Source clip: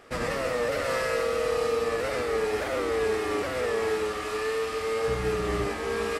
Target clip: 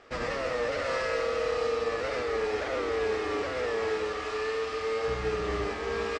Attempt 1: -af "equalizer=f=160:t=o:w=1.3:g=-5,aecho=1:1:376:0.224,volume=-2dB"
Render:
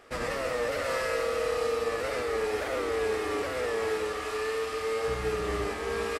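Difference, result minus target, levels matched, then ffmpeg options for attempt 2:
8000 Hz band +5.0 dB
-af "lowpass=f=6.5k:w=0.5412,lowpass=f=6.5k:w=1.3066,equalizer=f=160:t=o:w=1.3:g=-5,aecho=1:1:376:0.224,volume=-2dB"

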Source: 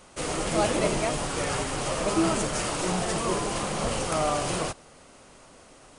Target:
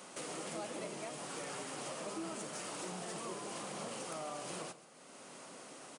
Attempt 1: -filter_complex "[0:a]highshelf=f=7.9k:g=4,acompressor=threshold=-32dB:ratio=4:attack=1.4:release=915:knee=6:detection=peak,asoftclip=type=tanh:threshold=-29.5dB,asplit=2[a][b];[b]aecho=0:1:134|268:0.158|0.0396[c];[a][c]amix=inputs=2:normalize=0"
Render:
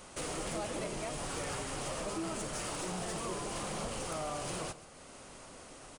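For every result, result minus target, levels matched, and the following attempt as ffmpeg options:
compressor: peak gain reduction -5 dB; 125 Hz band +4.0 dB
-filter_complex "[0:a]highshelf=f=7.9k:g=4,acompressor=threshold=-39.5dB:ratio=4:attack=1.4:release=915:knee=6:detection=peak,asoftclip=type=tanh:threshold=-29.5dB,asplit=2[a][b];[b]aecho=0:1:134|268:0.158|0.0396[c];[a][c]amix=inputs=2:normalize=0"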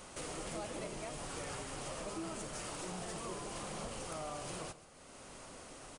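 125 Hz band +4.5 dB
-filter_complex "[0:a]highpass=f=160:w=0.5412,highpass=f=160:w=1.3066,highshelf=f=7.9k:g=4,acompressor=threshold=-39.5dB:ratio=4:attack=1.4:release=915:knee=6:detection=peak,asoftclip=type=tanh:threshold=-29.5dB,asplit=2[a][b];[b]aecho=0:1:134|268:0.158|0.0396[c];[a][c]amix=inputs=2:normalize=0"

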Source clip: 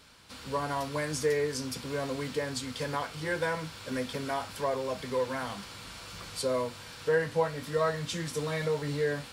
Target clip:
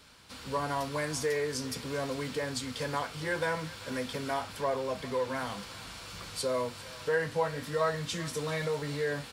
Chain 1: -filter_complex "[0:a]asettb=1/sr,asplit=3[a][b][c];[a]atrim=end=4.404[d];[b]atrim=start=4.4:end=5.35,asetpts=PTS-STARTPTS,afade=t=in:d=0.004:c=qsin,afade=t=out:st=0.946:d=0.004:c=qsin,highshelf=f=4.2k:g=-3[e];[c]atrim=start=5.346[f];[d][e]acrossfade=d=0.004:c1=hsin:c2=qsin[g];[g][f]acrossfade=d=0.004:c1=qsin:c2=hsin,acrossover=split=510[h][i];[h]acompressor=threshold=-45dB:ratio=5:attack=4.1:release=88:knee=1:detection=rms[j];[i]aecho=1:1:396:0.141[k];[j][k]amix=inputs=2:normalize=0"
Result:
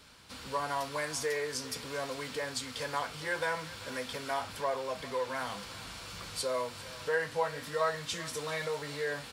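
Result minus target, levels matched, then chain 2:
compressor: peak gain reduction +9 dB
-filter_complex "[0:a]asettb=1/sr,asplit=3[a][b][c];[a]atrim=end=4.404[d];[b]atrim=start=4.4:end=5.35,asetpts=PTS-STARTPTS,afade=t=in:d=0.004:c=qsin,afade=t=out:st=0.946:d=0.004:c=qsin,highshelf=f=4.2k:g=-3[e];[c]atrim=start=5.346[f];[d][e]acrossfade=d=0.004:c1=hsin:c2=qsin[g];[g][f]acrossfade=d=0.004:c1=qsin:c2=hsin,acrossover=split=510[h][i];[h]acompressor=threshold=-33.5dB:ratio=5:attack=4.1:release=88:knee=1:detection=rms[j];[i]aecho=1:1:396:0.141[k];[j][k]amix=inputs=2:normalize=0"

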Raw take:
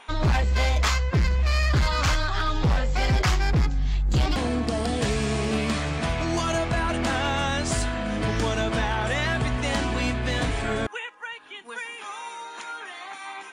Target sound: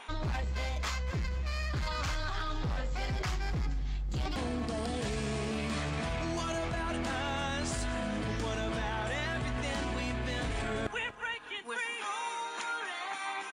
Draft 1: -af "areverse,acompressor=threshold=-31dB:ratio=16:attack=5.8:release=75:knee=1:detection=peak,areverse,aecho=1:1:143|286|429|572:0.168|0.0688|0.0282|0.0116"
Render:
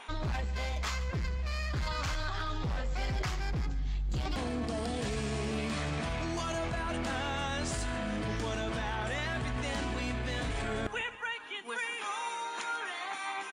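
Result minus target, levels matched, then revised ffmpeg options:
echo 96 ms early
-af "areverse,acompressor=threshold=-31dB:ratio=16:attack=5.8:release=75:knee=1:detection=peak,areverse,aecho=1:1:239|478|717|956:0.168|0.0688|0.0282|0.0116"

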